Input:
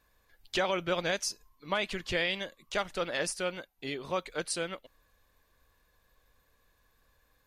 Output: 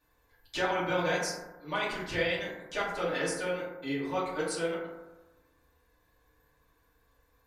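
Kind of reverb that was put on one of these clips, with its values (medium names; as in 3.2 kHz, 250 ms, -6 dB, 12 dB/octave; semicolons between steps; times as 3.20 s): FDN reverb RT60 1.1 s, low-frequency decay 1×, high-frequency decay 0.3×, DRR -9.5 dB; trim -8.5 dB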